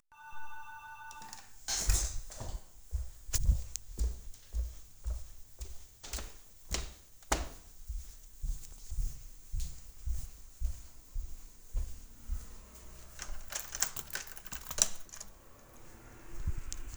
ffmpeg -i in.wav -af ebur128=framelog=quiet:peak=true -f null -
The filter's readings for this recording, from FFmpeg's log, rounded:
Integrated loudness:
  I:         -39.4 LUFS
  Threshold: -50.2 LUFS
Loudness range:
  LRA:         8.4 LU
  Threshold: -60.2 LUFS
  LRA low:   -45.4 LUFS
  LRA high:  -37.0 LUFS
True peak:
  Peak:       -4.2 dBFS